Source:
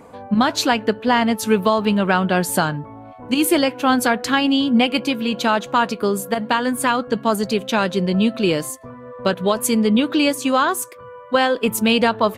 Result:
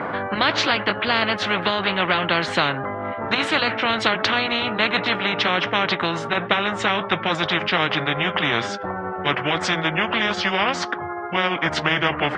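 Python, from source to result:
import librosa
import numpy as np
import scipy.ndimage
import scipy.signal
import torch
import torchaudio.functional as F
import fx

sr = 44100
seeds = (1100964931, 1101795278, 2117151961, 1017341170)

y = fx.pitch_glide(x, sr, semitones=-6.5, runs='starting unshifted')
y = fx.cabinet(y, sr, low_hz=240.0, low_slope=12, high_hz=2600.0, hz=(250.0, 440.0, 620.0, 930.0, 1400.0, 2500.0), db=(-8, -8, 3, -5, 4, -9))
y = fx.spectral_comp(y, sr, ratio=4.0)
y = y * 10.0 ** (4.0 / 20.0)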